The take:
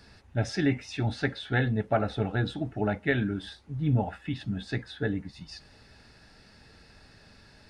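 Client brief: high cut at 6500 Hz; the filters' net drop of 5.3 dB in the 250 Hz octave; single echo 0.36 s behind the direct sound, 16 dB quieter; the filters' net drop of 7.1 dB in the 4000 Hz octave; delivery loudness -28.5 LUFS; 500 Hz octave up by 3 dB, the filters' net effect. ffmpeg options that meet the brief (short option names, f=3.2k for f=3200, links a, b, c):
-af "lowpass=6.5k,equalizer=f=250:t=o:g=-9,equalizer=f=500:t=o:g=6.5,equalizer=f=4k:t=o:g=-8,aecho=1:1:360:0.158,volume=2.5dB"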